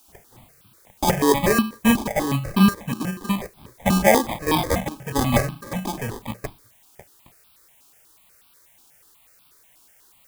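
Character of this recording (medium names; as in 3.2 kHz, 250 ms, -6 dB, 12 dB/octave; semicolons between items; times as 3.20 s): aliases and images of a low sample rate 1.4 kHz, jitter 0%; chopped level 1.4 Hz, depth 60%, duty 85%; a quantiser's noise floor 10-bit, dither triangular; notches that jump at a steady rate 8.2 Hz 520–1900 Hz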